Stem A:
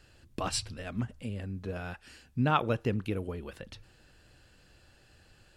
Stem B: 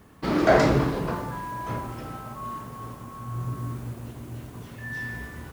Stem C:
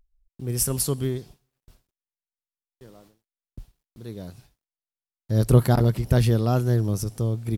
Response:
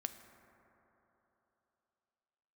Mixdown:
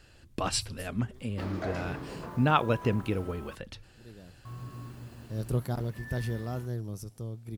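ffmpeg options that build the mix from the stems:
-filter_complex "[0:a]volume=2.5dB,asplit=2[a][b];[1:a]acompressor=threshold=-27dB:ratio=2.5,adelay=1150,volume=-10dB,asplit=3[c][d][e];[c]atrim=end=3.55,asetpts=PTS-STARTPTS,afade=t=out:st=3.546:d=0.004:c=hsin[f];[d]atrim=start=3.55:end=4.45,asetpts=PTS-STARTPTS,volume=0[g];[e]atrim=start=4.45,asetpts=PTS-STARTPTS,afade=t=in:d=0.004:c=hsin[h];[f][g][h]concat=n=3:v=0:a=1[i];[2:a]volume=-13.5dB[j];[b]apad=whole_len=333860[k];[j][k]sidechaincompress=threshold=-42dB:ratio=8:attack=6.1:release=328[l];[a][i][l]amix=inputs=3:normalize=0"

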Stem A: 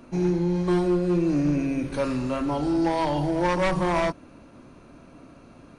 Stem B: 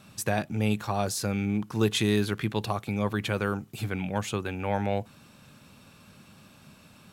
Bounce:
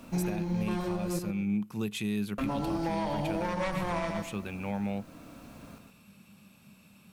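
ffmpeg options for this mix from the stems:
-filter_complex "[0:a]equalizer=f=370:t=o:w=0.27:g=-9,acrusher=bits=9:mix=0:aa=0.000001,volume=-1dB,asplit=3[a][b][c];[a]atrim=end=1.19,asetpts=PTS-STARTPTS,afade=t=out:st=1.186:d=0.004:c=hsin[d];[b]atrim=start=1.19:end=2.38,asetpts=PTS-STARTPTS,volume=0[e];[c]atrim=start=2.38,asetpts=PTS-STARTPTS,afade=t=in:d=0.004:c=hsin[f];[d][e][f]concat=n=3:v=0:a=1,asplit=2[g][h];[h]volume=-6dB[i];[1:a]equalizer=f=200:t=o:w=0.33:g=11,equalizer=f=1.6k:t=o:w=0.33:g=-3,equalizer=f=2.5k:t=o:w=0.33:g=7,equalizer=f=8k:t=o:w=0.33:g=3,equalizer=f=12.5k:t=o:w=0.33:g=10,volume=-8dB[j];[i]aecho=0:1:120|240|360|480:1|0.27|0.0729|0.0197[k];[g][j][k]amix=inputs=3:normalize=0,alimiter=limit=-22dB:level=0:latency=1:release=452"

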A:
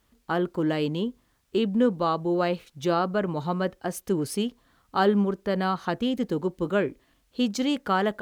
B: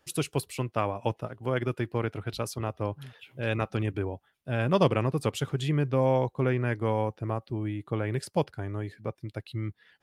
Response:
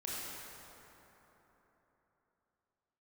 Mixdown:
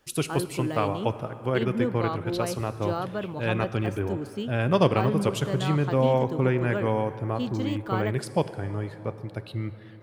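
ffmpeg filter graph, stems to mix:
-filter_complex "[0:a]deesser=0.95,volume=-6dB[a];[1:a]volume=1dB,asplit=2[b][c];[c]volume=-12dB[d];[2:a]atrim=start_sample=2205[e];[d][e]afir=irnorm=-1:irlink=0[f];[a][b][f]amix=inputs=3:normalize=0"

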